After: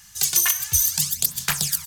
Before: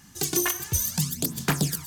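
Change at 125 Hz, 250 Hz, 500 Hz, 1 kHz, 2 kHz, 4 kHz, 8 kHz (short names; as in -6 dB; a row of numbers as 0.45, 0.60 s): -6.5 dB, -12.0 dB, under -10 dB, -1.0 dB, +3.0 dB, +6.5 dB, +7.5 dB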